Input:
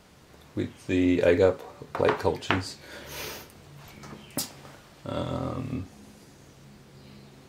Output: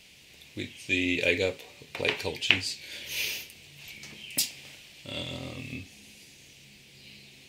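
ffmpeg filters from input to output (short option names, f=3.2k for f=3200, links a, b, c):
-af "highshelf=f=1.8k:t=q:w=3:g=11.5,volume=-7.5dB"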